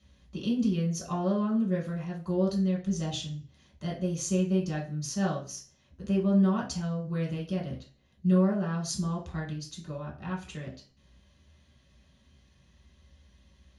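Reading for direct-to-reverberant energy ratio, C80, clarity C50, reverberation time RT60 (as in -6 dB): -3.5 dB, 14.5 dB, 8.5 dB, 0.40 s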